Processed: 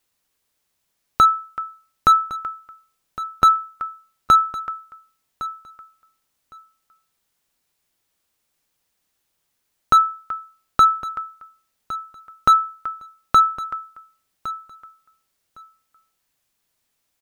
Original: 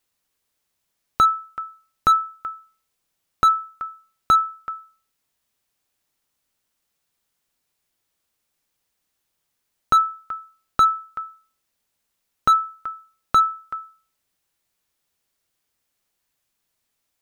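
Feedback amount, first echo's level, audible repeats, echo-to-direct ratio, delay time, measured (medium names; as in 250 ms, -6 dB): 16%, -15.5 dB, 2, -15.5 dB, 1110 ms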